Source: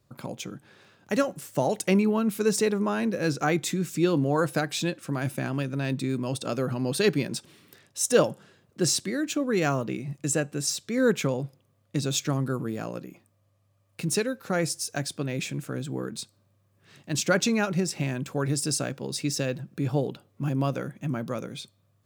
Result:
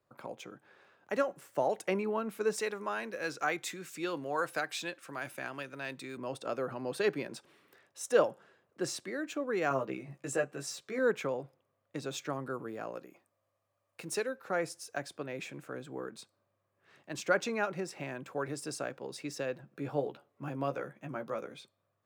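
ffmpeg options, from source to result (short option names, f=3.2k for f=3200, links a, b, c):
-filter_complex "[0:a]asettb=1/sr,asplit=3[a][b][c];[a]atrim=end=2.564[d];[b]atrim=start=2.56:end=6.17,asetpts=PTS-STARTPTS,afade=t=in:d=0.004:c=qsin,afade=t=out:st=3.606:d=0.004:c=qsin,tiltshelf=f=1.3k:g=-6[e];[c]atrim=start=6.166[f];[d][e]acrossfade=d=0.004:c1=hsin:c2=qsin[g];[g][f]acrossfade=d=0.004:c1=qsin:c2=hsin,asettb=1/sr,asplit=3[h][i][j];[h]atrim=end=9.694[k];[i]atrim=start=9.69:end=10.99,asetpts=PTS-STARTPTS,afade=t=in:d=0.004:c=qsin,afade=t=out:st=1.296:d=0.004:c=qsin,asplit=2[l][m];[m]adelay=15,volume=-3dB[n];[l][n]amix=inputs=2:normalize=0,atrim=end_sample=57330[o];[j]atrim=start=10.986[p];[k][o]acrossfade=d=0.004:c1=hsin:c2=qsin[q];[q][p]acrossfade=d=0.004:c1=qsin:c2=hsin,asettb=1/sr,asplit=3[r][s][t];[r]atrim=end=12.954[u];[s]atrim=start=12.95:end=14.29,asetpts=PTS-STARTPTS,afade=t=in:d=0.004:c=qsin,afade=t=out:st=1.336:d=0.004:c=qsin,bass=f=250:g=-3,treble=f=4k:g=5[v];[t]atrim=start=14.286[w];[u][v]acrossfade=d=0.004:c1=hsin:c2=qsin[x];[x][w]acrossfade=d=0.004:c1=qsin:c2=hsin,asettb=1/sr,asplit=3[y][z][aa];[y]atrim=end=19.624[ab];[z]atrim=start=19.62:end=21.54,asetpts=PTS-STARTPTS,afade=t=in:d=0.004:c=qsin,afade=t=out:st=1.916:d=0.004:c=qsin,asplit=2[ac][ad];[ad]adelay=14,volume=-7dB[ae];[ac][ae]amix=inputs=2:normalize=0,atrim=end_sample=84672[af];[aa]atrim=start=21.536[ag];[ab][af]acrossfade=d=0.004:c1=hsin:c2=qsin[ah];[ah][ag]acrossfade=d=0.004:c1=qsin:c2=hsin,acrossover=split=370 2300:gain=0.178 1 0.251[ai][aj][ak];[ai][aj][ak]amix=inputs=3:normalize=0,volume=-3dB"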